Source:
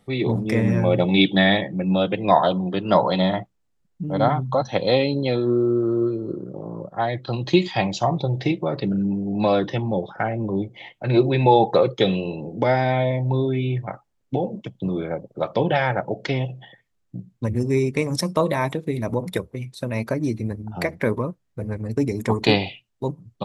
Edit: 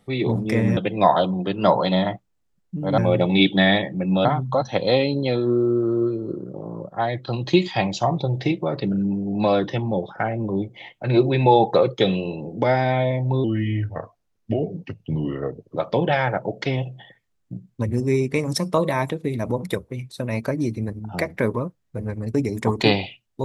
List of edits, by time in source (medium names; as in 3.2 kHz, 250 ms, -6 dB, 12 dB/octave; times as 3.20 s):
0.77–2.04 s: move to 4.25 s
13.44–15.39 s: speed 84%